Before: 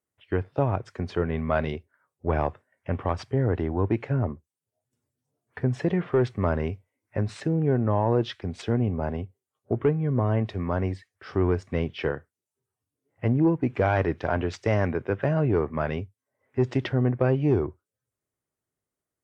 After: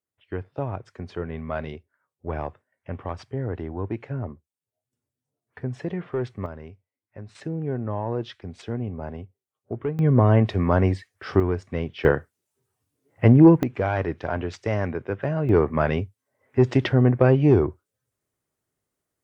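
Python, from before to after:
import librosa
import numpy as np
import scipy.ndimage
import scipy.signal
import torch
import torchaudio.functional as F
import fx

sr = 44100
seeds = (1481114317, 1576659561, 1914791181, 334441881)

y = fx.gain(x, sr, db=fx.steps((0.0, -5.0), (6.46, -13.0), (7.35, -5.0), (9.99, 7.0), (11.4, -1.0), (12.05, 9.0), (13.63, -1.5), (15.49, 5.5)))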